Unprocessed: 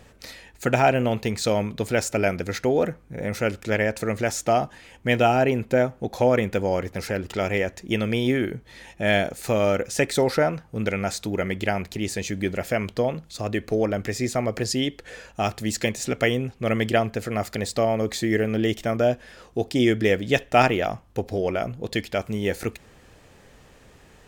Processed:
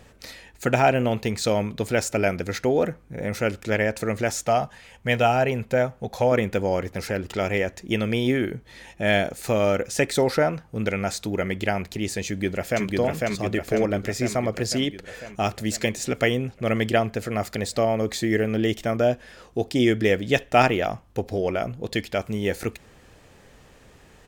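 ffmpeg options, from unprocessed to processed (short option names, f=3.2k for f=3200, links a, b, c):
-filter_complex "[0:a]asettb=1/sr,asplit=3[a][b][c];[a]atrim=end=4.434[d];[b]atrim=start=4.43:end=6.32,asetpts=PTS-STARTPTS,afade=t=in:d=0.004:c=qsin,afade=t=out:st=1.886:d=0.004:c=qsin,equalizer=f=310:t=o:w=0.38:g=-14.5[e];[c]atrim=start=6.316[f];[d][e]acrossfade=d=0.004:c1=hsin:c2=qsin[g];[g][f]acrossfade=d=0.004:c1=qsin:c2=hsin,asplit=2[h][i];[i]afade=t=in:st=12.26:d=0.01,afade=t=out:st=12.85:d=0.01,aecho=0:1:500|1000|1500|2000|2500|3000|3500|4000|4500|5000|5500:0.841395|0.546907|0.355489|0.231068|0.150194|0.0976263|0.0634571|0.0412471|0.0268106|0.0174269|0.0113275[j];[h][j]amix=inputs=2:normalize=0"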